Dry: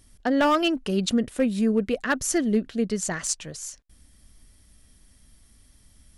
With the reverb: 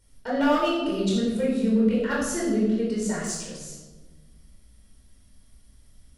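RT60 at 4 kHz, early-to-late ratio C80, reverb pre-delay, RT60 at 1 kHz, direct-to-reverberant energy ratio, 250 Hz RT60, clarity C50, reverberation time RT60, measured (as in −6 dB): 0.85 s, 3.5 dB, 20 ms, 1.1 s, −5.5 dB, 1.9 s, 1.0 dB, 1.3 s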